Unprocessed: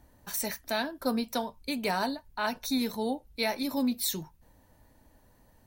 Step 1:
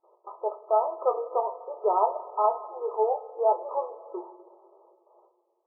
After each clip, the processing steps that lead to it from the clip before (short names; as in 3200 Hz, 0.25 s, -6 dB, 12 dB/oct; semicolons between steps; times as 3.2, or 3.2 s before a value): gate with hold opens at -50 dBFS; two-slope reverb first 0.31 s, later 2.7 s, from -17 dB, DRR 5.5 dB; FFT band-pass 340–1300 Hz; gain +7.5 dB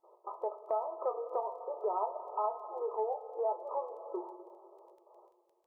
compressor 2.5:1, threshold -35 dBFS, peak gain reduction 12 dB; crackle 10/s -57 dBFS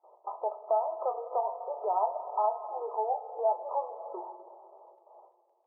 band-pass 750 Hz, Q 3; gain +8.5 dB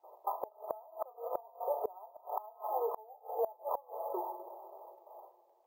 flipped gate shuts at -25 dBFS, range -26 dB; careless resampling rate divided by 3×, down none, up hold; gain +2.5 dB